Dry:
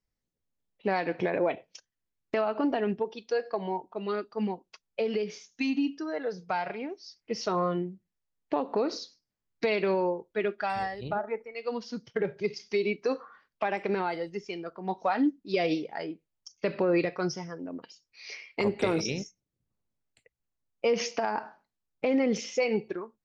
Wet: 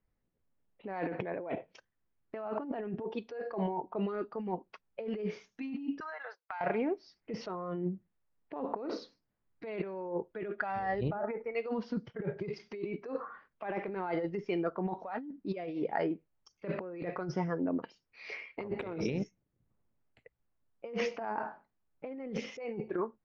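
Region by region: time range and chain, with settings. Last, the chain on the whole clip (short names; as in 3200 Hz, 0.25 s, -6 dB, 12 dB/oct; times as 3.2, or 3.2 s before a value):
6–6.61 gate -39 dBFS, range -25 dB + HPF 910 Hz 24 dB/oct + compressor 10:1, threshold -42 dBFS
whole clip: LPF 1800 Hz 12 dB/oct; negative-ratio compressor -36 dBFS, ratio -1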